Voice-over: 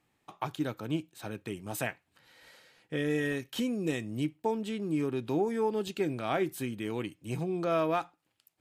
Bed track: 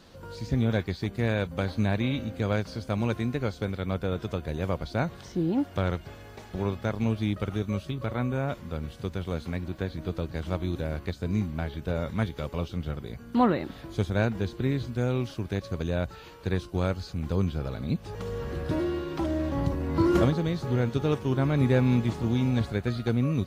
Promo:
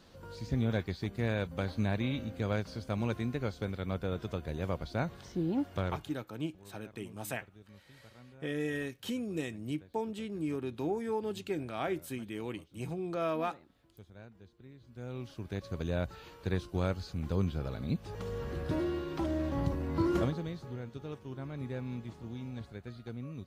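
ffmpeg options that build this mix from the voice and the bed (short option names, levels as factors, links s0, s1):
-filter_complex "[0:a]adelay=5500,volume=0.596[s0];[1:a]volume=6.68,afade=t=out:st=5.77:d=0.49:silence=0.0891251,afade=t=in:st=14.81:d=1.12:silence=0.0794328,afade=t=out:st=19.74:d=1.06:silence=0.251189[s1];[s0][s1]amix=inputs=2:normalize=0"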